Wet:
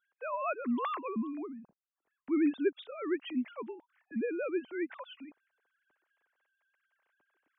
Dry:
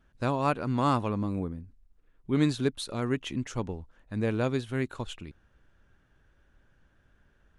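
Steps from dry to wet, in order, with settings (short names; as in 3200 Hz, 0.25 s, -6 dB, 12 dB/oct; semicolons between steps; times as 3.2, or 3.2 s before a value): sine-wave speech; gain -5 dB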